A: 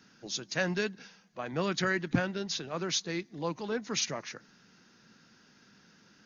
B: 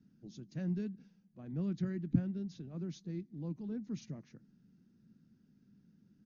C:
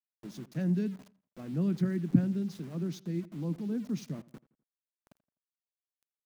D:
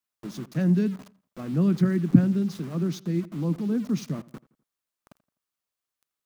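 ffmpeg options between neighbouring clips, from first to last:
-af "firequalizer=gain_entry='entry(210,0);entry(470,-17);entry(1000,-26)':delay=0.05:min_phase=1"
-filter_complex "[0:a]highpass=f=130:w=0.5412,highpass=f=130:w=1.3066,aeval=exprs='val(0)*gte(abs(val(0)),0.00158)':c=same,asplit=2[a][b];[b]adelay=84,lowpass=f=2.7k:p=1,volume=-20dB,asplit=2[c][d];[d]adelay=84,lowpass=f=2.7k:p=1,volume=0.43,asplit=2[e][f];[f]adelay=84,lowpass=f=2.7k:p=1,volume=0.43[g];[a][c][e][g]amix=inputs=4:normalize=0,volume=7dB"
-af "equalizer=f=1.2k:w=3.5:g=5.5,volume=7.5dB"

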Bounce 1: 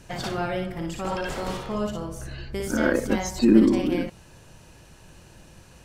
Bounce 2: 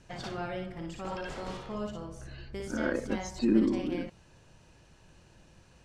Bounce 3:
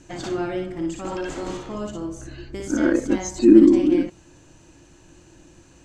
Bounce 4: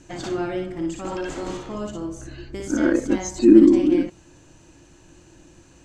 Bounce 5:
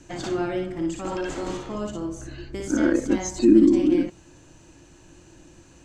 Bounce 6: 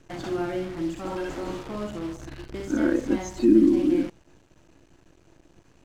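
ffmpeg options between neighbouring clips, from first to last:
-af "lowpass=7.2k,volume=-8.5dB"
-af "superequalizer=6b=3.55:15b=2.51,volume=5.5dB"
-af anull
-filter_complex "[0:a]acrossover=split=270|3000[a][b][c];[b]acompressor=threshold=-20dB:ratio=3[d];[a][d][c]amix=inputs=3:normalize=0"
-af "acrusher=bits=7:dc=4:mix=0:aa=0.000001,aemphasis=mode=reproduction:type=50fm,volume=-2.5dB"

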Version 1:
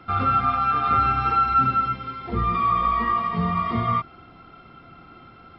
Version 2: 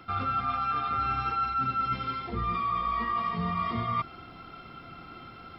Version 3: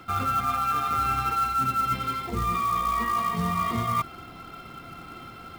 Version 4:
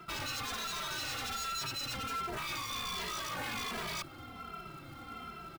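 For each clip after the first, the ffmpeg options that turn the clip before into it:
-af "highshelf=f=4k:g=11,areverse,acompressor=threshold=-27dB:ratio=6,areverse"
-af "acrusher=bits=4:mode=log:mix=0:aa=0.000001,volume=3.5dB"
-filter_complex "[0:a]aeval=exprs='0.0335*(abs(mod(val(0)/0.0335+3,4)-2)-1)':c=same,asplit=2[a][b];[b]adelay=2.6,afreqshift=-1.3[c];[a][c]amix=inputs=2:normalize=1,volume=-1.5dB"

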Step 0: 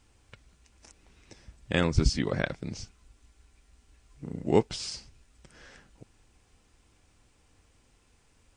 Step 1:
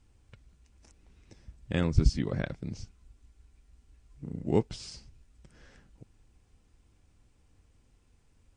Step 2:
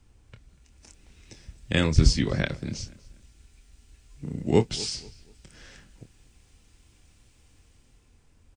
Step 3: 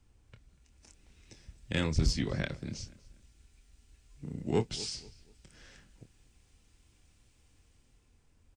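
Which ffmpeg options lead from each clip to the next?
-af "lowshelf=f=320:g=10,volume=-8dB"
-filter_complex "[0:a]acrossover=split=220|910|1900[a][b][c][d];[d]dynaudnorm=f=130:g=13:m=8.5dB[e];[a][b][c][e]amix=inputs=4:normalize=0,asplit=2[f][g];[g]adelay=26,volume=-10dB[h];[f][h]amix=inputs=2:normalize=0,asplit=2[i][j];[j]adelay=241,lowpass=f=3.5k:p=1,volume=-20dB,asplit=2[k][l];[l]adelay=241,lowpass=f=3.5k:p=1,volume=0.33,asplit=2[m][n];[n]adelay=241,lowpass=f=3.5k:p=1,volume=0.33[o];[i][k][m][o]amix=inputs=4:normalize=0,volume=4.5dB"
-af "asoftclip=type=tanh:threshold=-11.5dB,volume=-6.5dB"

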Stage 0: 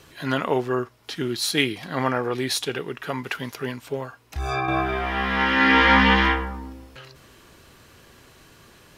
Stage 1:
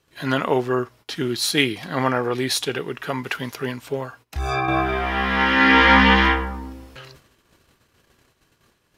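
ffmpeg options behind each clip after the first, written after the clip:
-af "agate=range=-19dB:threshold=-48dB:ratio=16:detection=peak,volume=2.5dB"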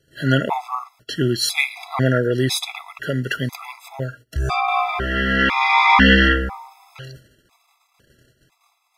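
-af "equalizer=f=130:w=5.3:g=7,afftfilt=real='re*gt(sin(2*PI*1*pts/sr)*(1-2*mod(floor(b*sr/1024/670),2)),0)':imag='im*gt(sin(2*PI*1*pts/sr)*(1-2*mod(floor(b*sr/1024/670),2)),0)':win_size=1024:overlap=0.75,volume=4dB"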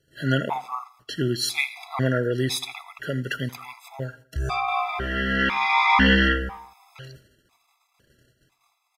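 -af "aecho=1:1:81|162|243:0.1|0.044|0.0194,volume=-5dB"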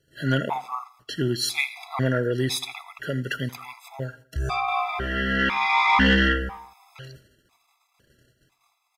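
-af "asoftclip=type=tanh:threshold=-7.5dB"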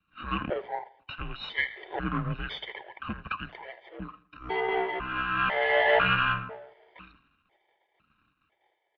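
-af "aeval=exprs='if(lt(val(0),0),0.447*val(0),val(0))':c=same,highpass=300,highpass=f=430:t=q:w=0.5412,highpass=f=430:t=q:w=1.307,lowpass=f=3.5k:t=q:w=0.5176,lowpass=f=3.5k:t=q:w=0.7071,lowpass=f=3.5k:t=q:w=1.932,afreqshift=-340"

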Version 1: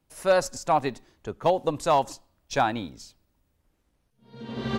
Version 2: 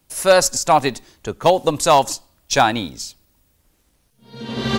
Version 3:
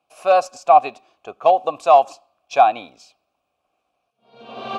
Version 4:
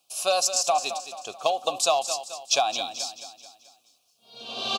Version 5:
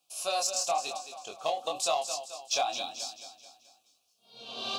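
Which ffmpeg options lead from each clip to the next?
-af "highshelf=f=3.3k:g=11,volume=7.5dB"
-filter_complex "[0:a]asplit=3[a][b][c];[a]bandpass=f=730:t=q:w=8,volume=0dB[d];[b]bandpass=f=1.09k:t=q:w=8,volume=-6dB[e];[c]bandpass=f=2.44k:t=q:w=8,volume=-9dB[f];[d][e][f]amix=inputs=3:normalize=0,volume=7.5dB"
-filter_complex "[0:a]acompressor=threshold=-16dB:ratio=6,aexciter=amount=12.9:drive=2.8:freq=3.1k,asplit=2[a][b];[b]aecho=0:1:217|434|651|868|1085:0.282|0.132|0.0623|0.0293|0.0138[c];[a][c]amix=inputs=2:normalize=0,volume=-4.5dB"
-filter_complex "[0:a]asplit=2[a][b];[b]asoftclip=type=tanh:threshold=-22dB,volume=-9dB[c];[a][c]amix=inputs=2:normalize=0,flanger=delay=19:depth=6.7:speed=0.97,volume=-5dB"

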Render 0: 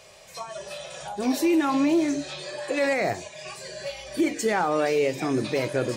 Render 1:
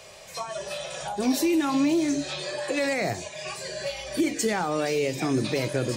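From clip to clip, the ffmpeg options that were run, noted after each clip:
-filter_complex "[0:a]acrossover=split=240|3000[a][b][c];[b]acompressor=threshold=-32dB:ratio=2.5[d];[a][d][c]amix=inputs=3:normalize=0,volume=3.5dB"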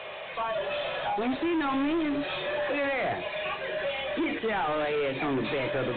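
-filter_complex "[0:a]asplit=2[a][b];[b]highpass=f=720:p=1,volume=27dB,asoftclip=type=tanh:threshold=-13.5dB[c];[a][c]amix=inputs=2:normalize=0,lowpass=f=2.4k:p=1,volume=-6dB,volume=-7.5dB" -ar 8000 -c:a pcm_mulaw

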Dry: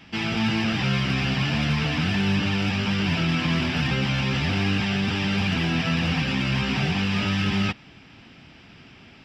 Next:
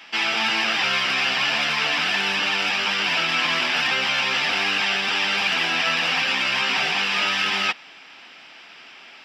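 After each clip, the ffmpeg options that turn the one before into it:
-af "highpass=710,volume=7.5dB"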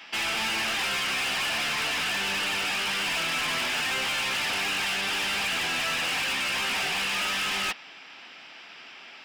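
-af "asoftclip=type=hard:threshold=-24.5dB,volume=-1.5dB"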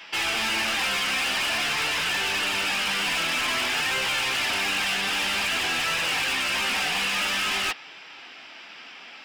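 -af "flanger=delay=1.9:depth=2.3:regen=-57:speed=0.5:shape=triangular,volume=6.5dB"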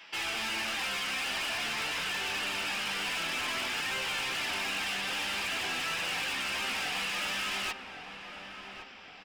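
-filter_complex "[0:a]asplit=2[a][b];[b]adelay=1113,lowpass=f=1.3k:p=1,volume=-7dB,asplit=2[c][d];[d]adelay=1113,lowpass=f=1.3k:p=1,volume=0.48,asplit=2[e][f];[f]adelay=1113,lowpass=f=1.3k:p=1,volume=0.48,asplit=2[g][h];[h]adelay=1113,lowpass=f=1.3k:p=1,volume=0.48,asplit=2[i][j];[j]adelay=1113,lowpass=f=1.3k:p=1,volume=0.48,asplit=2[k][l];[l]adelay=1113,lowpass=f=1.3k:p=1,volume=0.48[m];[a][c][e][g][i][k][m]amix=inputs=7:normalize=0,volume=-8dB"

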